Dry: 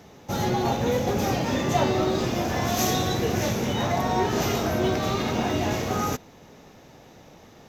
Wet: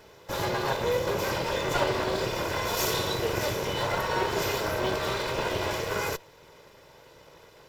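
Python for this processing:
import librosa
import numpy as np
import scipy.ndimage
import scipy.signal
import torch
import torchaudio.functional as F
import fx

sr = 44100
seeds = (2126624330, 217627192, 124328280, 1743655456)

y = fx.lower_of_two(x, sr, delay_ms=2.0)
y = fx.low_shelf(y, sr, hz=230.0, db=-7.0)
y = fx.notch(y, sr, hz=6300.0, q=7.8)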